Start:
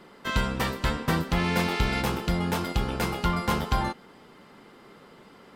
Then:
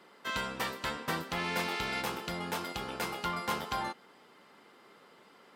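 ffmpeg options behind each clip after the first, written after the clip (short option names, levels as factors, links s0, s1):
-af "highpass=f=500:p=1,volume=0.596"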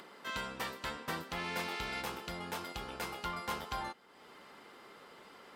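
-af "asubboost=boost=3.5:cutoff=82,acompressor=mode=upward:threshold=0.00891:ratio=2.5,volume=0.596"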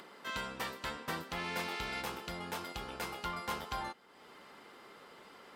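-af anull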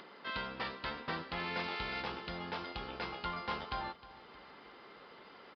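-af "aecho=1:1:311|622|933|1244:0.141|0.0664|0.0312|0.0147,aresample=11025,aresample=44100"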